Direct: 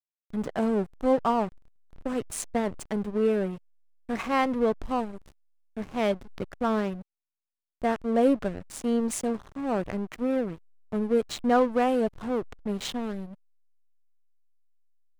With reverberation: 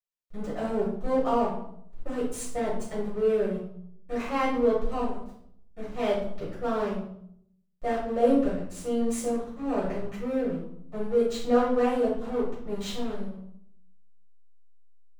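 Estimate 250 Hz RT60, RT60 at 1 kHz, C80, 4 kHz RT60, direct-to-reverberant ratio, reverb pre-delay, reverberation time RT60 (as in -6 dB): 0.90 s, 0.65 s, 7.5 dB, 0.50 s, -10.5 dB, 3 ms, 0.70 s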